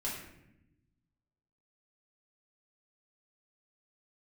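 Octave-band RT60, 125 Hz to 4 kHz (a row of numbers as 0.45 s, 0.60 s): 1.7 s, 1.5 s, 0.95 s, 0.70 s, 0.85 s, 0.55 s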